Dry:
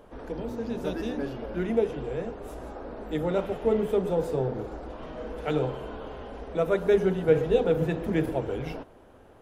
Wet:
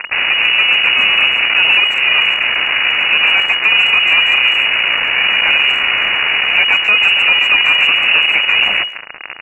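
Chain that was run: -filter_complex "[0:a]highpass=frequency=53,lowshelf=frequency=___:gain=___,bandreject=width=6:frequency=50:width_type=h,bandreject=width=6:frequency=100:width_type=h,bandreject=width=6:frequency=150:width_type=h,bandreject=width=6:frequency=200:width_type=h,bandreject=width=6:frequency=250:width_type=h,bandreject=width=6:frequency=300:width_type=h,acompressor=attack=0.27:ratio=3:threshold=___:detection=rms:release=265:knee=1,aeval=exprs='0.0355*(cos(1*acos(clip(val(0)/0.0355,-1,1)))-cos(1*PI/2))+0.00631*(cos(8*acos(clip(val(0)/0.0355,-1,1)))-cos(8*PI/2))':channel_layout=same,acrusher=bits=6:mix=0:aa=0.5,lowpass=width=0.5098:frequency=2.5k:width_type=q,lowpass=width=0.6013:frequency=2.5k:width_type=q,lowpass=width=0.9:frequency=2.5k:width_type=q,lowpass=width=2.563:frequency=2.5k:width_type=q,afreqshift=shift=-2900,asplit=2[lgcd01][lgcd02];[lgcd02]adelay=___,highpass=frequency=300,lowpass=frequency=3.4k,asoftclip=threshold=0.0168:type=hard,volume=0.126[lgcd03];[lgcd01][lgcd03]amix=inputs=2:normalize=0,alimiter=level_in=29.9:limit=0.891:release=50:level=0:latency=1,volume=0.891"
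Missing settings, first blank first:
82, -4, 0.01, 140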